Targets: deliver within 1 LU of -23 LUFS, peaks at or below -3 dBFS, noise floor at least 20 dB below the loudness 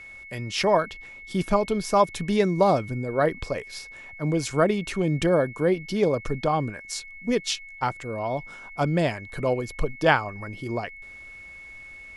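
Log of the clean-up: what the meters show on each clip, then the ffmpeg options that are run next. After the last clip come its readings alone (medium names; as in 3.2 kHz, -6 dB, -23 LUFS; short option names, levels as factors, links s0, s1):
steady tone 2.2 kHz; tone level -41 dBFS; loudness -25.5 LUFS; peak level -4.0 dBFS; loudness target -23.0 LUFS
-> -af "bandreject=f=2200:w=30"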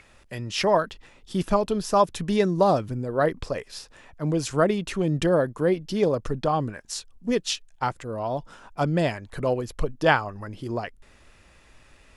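steady tone not found; loudness -25.5 LUFS; peak level -4.0 dBFS; loudness target -23.0 LUFS
-> -af "volume=1.33,alimiter=limit=0.708:level=0:latency=1"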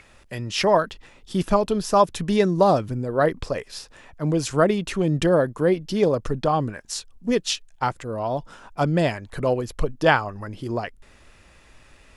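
loudness -23.0 LUFS; peak level -3.0 dBFS; noise floor -53 dBFS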